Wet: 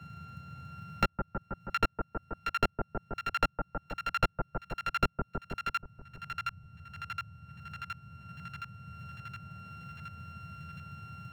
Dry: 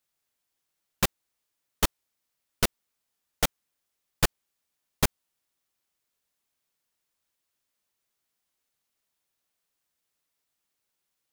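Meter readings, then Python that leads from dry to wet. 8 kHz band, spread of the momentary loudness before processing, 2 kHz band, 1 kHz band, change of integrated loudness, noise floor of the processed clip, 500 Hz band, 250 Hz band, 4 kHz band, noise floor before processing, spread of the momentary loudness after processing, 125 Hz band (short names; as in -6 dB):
-20.5 dB, 1 LU, +0.5 dB, +5.5 dB, -7.5 dB, -69 dBFS, -1.5 dB, -1.5 dB, -7.0 dB, -82 dBFS, 15 LU, -0.5 dB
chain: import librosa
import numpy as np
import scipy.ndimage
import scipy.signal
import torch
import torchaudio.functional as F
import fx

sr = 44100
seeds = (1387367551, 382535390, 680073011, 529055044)

p1 = np.r_[np.sort(x[:len(x) // 32 * 32].reshape(-1, 32), axis=1).ravel(), x[len(x) // 32 * 32:]]
p2 = scipy.signal.sosfilt(scipy.signal.butter(2, 2100.0, 'lowpass', fs=sr, output='sos'), p1)
p3 = fx.low_shelf(p2, sr, hz=310.0, db=-6.0)
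p4 = fx.hpss(p3, sr, part='harmonic', gain_db=9)
p5 = fx.peak_eq(p4, sr, hz=1100.0, db=-9.0, octaves=0.24)
p6 = fx.level_steps(p5, sr, step_db=15)
p7 = p5 + F.gain(torch.from_numpy(p6), 1.0).numpy()
p8 = fx.dmg_noise_band(p7, sr, seeds[0], low_hz=76.0, high_hz=180.0, level_db=-70.0)
p9 = fx.quant_float(p8, sr, bits=4)
p10 = fx.echo_split(p9, sr, split_hz=1300.0, low_ms=160, high_ms=718, feedback_pct=52, wet_db=-6.5)
p11 = fx.band_squash(p10, sr, depth_pct=70)
y = F.gain(torch.from_numpy(p11), 1.5).numpy()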